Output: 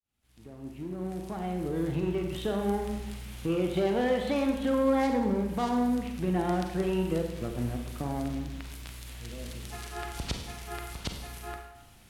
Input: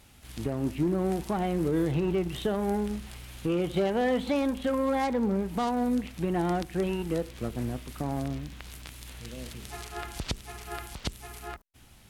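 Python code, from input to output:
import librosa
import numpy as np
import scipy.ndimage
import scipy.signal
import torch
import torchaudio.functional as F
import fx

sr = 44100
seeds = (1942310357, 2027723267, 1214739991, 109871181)

y = fx.fade_in_head(x, sr, length_s=2.73)
y = fx.rev_schroeder(y, sr, rt60_s=1.0, comb_ms=33, drr_db=3.5)
y = y * librosa.db_to_amplitude(-2.0)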